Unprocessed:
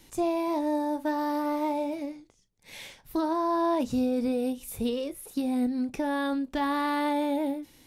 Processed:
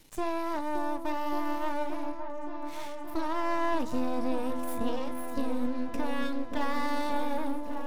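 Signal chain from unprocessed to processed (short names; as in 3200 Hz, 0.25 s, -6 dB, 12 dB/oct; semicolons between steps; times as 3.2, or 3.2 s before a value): half-wave rectifier; repeats that get brighter 0.572 s, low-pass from 750 Hz, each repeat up 1 oct, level -6 dB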